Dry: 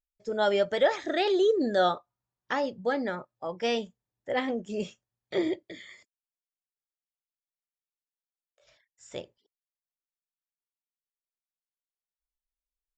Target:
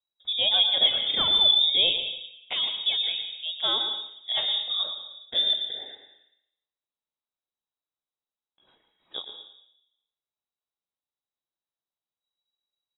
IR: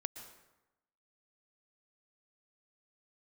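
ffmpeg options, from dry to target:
-filter_complex "[0:a]tiltshelf=frequency=970:gain=6.5,acrossover=split=1300[link_01][link_02];[link_02]aexciter=amount=7.2:drive=5.9:freq=2900[link_03];[link_01][link_03]amix=inputs=2:normalize=0,aecho=1:1:113:0.237[link_04];[1:a]atrim=start_sample=2205[link_05];[link_04][link_05]afir=irnorm=-1:irlink=0,lowpass=frequency=3300:width_type=q:width=0.5098,lowpass=frequency=3300:width_type=q:width=0.6013,lowpass=frequency=3300:width_type=q:width=0.9,lowpass=frequency=3300:width_type=q:width=2.563,afreqshift=-3900"

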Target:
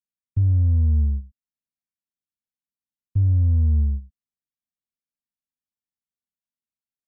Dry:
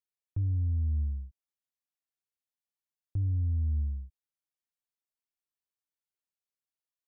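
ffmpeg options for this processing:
ffmpeg -i in.wav -filter_complex "[0:a]agate=range=-10dB:threshold=-35dB:ratio=16:detection=peak,lowshelf=frequency=320:width_type=q:width=3:gain=10,acrossover=split=240[link_01][link_02];[link_02]aeval=exprs='clip(val(0),-1,0.00112)':channel_layout=same[link_03];[link_01][link_03]amix=inputs=2:normalize=0" out.wav

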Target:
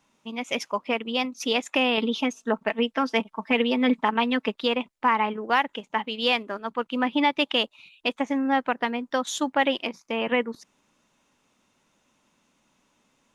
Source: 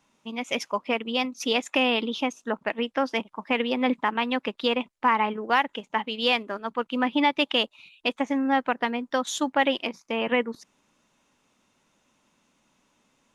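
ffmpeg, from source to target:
ffmpeg -i in.wav -filter_complex "[0:a]asettb=1/sr,asplit=3[link_01][link_02][link_03];[link_01]atrim=end=1.974[link_04];[link_02]atrim=start=1.97:end=4.54,asetpts=PTS-STARTPTS,afade=type=in:duration=0.004:curve=qsin,afade=type=out:start_time=2.566:duration=0.004:curve=qsin,aecho=1:1:4.5:0.66,atrim=end_sample=113337[link_05];[link_03]atrim=start=4.536[link_06];[link_04][link_05]acrossfade=duration=0.004:curve1=hsin:curve2=qsin[link_07];[link_07][link_06]acrossfade=duration=0.004:curve1=qsin:curve2=hsin" out.wav

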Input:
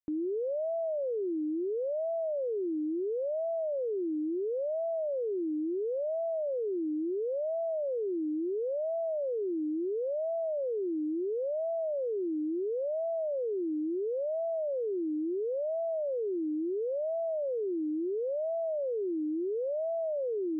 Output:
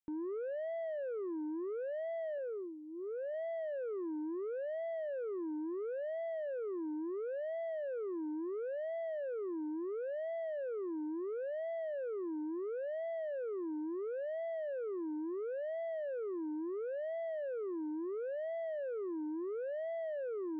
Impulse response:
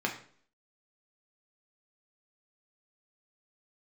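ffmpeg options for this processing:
-filter_complex "[0:a]asettb=1/sr,asplit=3[link_01][link_02][link_03];[link_01]atrim=end=2.384[link_04];[link_02]atrim=start=2.38:end=3.34,asetpts=PTS-STARTPTS,afade=type=in:duration=0.004:curve=qsin,afade=type=out:start_time=0.956:duration=0.004:curve=qsin,equalizer=frequency=290:width_type=o:width=0.46:gain=-15[link_05];[link_03]atrim=start=3.336[link_06];[link_04][link_05]acrossfade=duration=0.004:curve1=hsin:curve2=qsin[link_07];[link_07][link_06]acrossfade=duration=0.004:curve1=qsin:curve2=hsin,asoftclip=type=tanh:threshold=-31.5dB,volume=-4dB"

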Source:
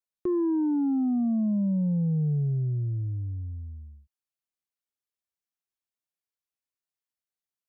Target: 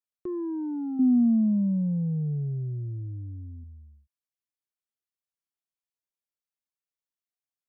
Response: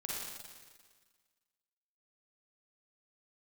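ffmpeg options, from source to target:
-filter_complex "[0:a]asettb=1/sr,asplit=3[link_01][link_02][link_03];[link_01]atrim=end=0.994[link_04];[link_02]atrim=start=0.99:end=3.64,asetpts=PTS-STARTPTS,afade=type=in:duration=0.004:curve=qsin,afade=type=out:start_time=2.646:duration=0.004:curve=qsin,equalizer=frequency=250:width_type=o:width=0.85:gain=11.5[link_05];[link_03]atrim=start=3.636[link_06];[link_04][link_05]acrossfade=duration=0.004:curve1=hsin:curve2=qsin[link_07];[link_07][link_06]acrossfade=duration=0.004:curve1=qsin:curve2=hsin,volume=-6dB"

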